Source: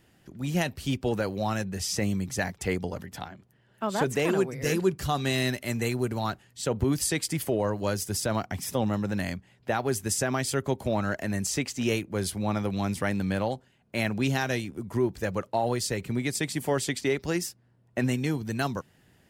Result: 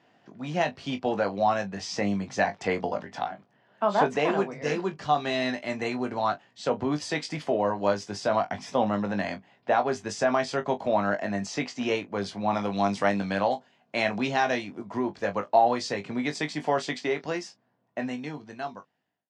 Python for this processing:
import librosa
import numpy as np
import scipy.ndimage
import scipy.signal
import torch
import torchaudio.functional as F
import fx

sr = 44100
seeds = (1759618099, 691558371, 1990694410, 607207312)

y = fx.fade_out_tail(x, sr, length_s=3.29)
y = fx.high_shelf(y, sr, hz=4200.0, db=fx.steps((0.0, -8.5), (12.52, 2.0), (14.19, -5.5)))
y = fx.rider(y, sr, range_db=4, speed_s=2.0)
y = fx.cabinet(y, sr, low_hz=230.0, low_slope=12, high_hz=6100.0, hz=(370.0, 700.0, 1000.0), db=(-5, 7, 5))
y = fx.room_early_taps(y, sr, ms=(20, 40), db=(-7.0, -16.0))
y = y * 10.0 ** (1.5 / 20.0)